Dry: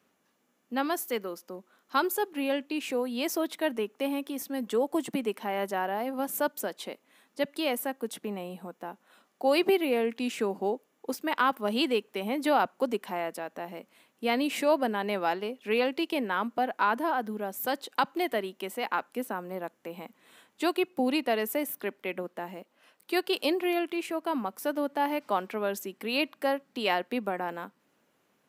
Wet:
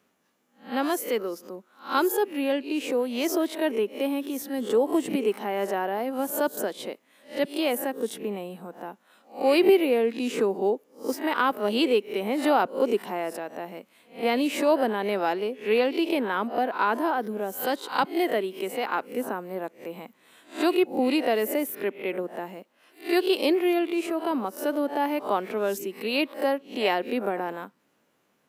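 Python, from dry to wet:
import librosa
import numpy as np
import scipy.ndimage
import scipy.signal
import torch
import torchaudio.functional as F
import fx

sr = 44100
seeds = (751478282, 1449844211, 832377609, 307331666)

y = fx.spec_swells(x, sr, rise_s=0.33)
y = fx.dynamic_eq(y, sr, hz=390.0, q=1.3, threshold_db=-41.0, ratio=4.0, max_db=6)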